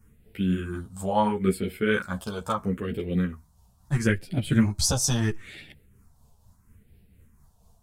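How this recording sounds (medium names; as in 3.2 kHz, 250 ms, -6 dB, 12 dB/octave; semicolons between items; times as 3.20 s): phasing stages 4, 0.75 Hz, lowest notch 330–1100 Hz; tremolo triangle 4.2 Hz, depth 40%; a shimmering, thickened sound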